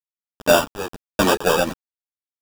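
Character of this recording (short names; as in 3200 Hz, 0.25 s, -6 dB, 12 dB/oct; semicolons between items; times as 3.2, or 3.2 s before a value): aliases and images of a low sample rate 2100 Hz, jitter 0%; random-step tremolo 4.2 Hz, depth 100%; a quantiser's noise floor 6-bit, dither none; a shimmering, thickened sound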